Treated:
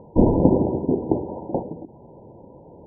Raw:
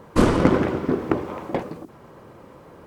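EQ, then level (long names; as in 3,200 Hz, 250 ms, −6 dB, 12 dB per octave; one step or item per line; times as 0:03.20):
linear-phase brick-wall low-pass 1,000 Hz
high-frequency loss of the air 450 metres
+2.0 dB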